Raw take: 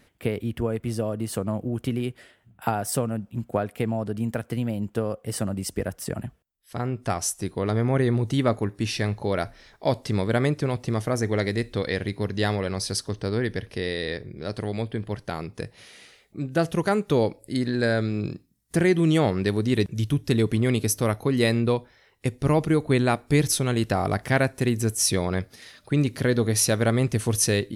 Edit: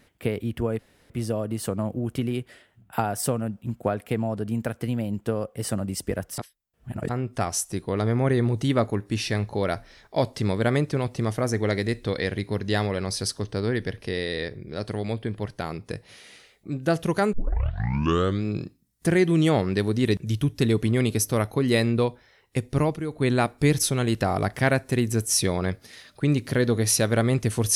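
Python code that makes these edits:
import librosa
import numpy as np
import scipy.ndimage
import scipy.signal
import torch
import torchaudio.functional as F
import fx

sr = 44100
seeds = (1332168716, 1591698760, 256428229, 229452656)

y = fx.edit(x, sr, fx.insert_room_tone(at_s=0.79, length_s=0.31),
    fx.reverse_span(start_s=6.07, length_s=0.71),
    fx.tape_start(start_s=17.02, length_s=1.11),
    fx.fade_down_up(start_s=22.45, length_s=0.57, db=-9.5, fade_s=0.26), tone=tone)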